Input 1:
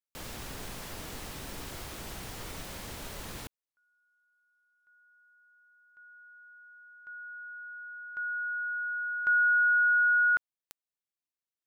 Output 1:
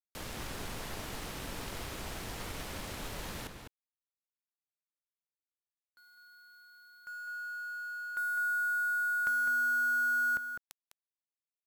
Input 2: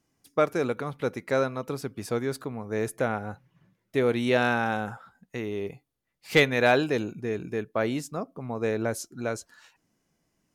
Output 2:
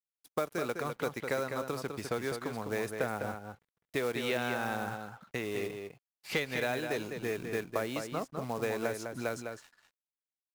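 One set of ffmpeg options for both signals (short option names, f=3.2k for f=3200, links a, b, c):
-filter_complex "[0:a]aresample=32000,aresample=44100,acrusher=bits=5:mode=log:mix=0:aa=0.000001,acrossover=split=510|4500[a][b][c];[a]acompressor=threshold=-39dB:ratio=8[d];[b]acompressor=threshold=-34dB:ratio=8[e];[c]acompressor=threshold=-49dB:ratio=5[f];[d][e][f]amix=inputs=3:normalize=0,aeval=exprs='sgn(val(0))*max(abs(val(0))-0.00158,0)':c=same,asplit=2[g][h];[h]adelay=204.1,volume=-6dB,highshelf=f=4k:g=-4.59[i];[g][i]amix=inputs=2:normalize=0,volume=2dB"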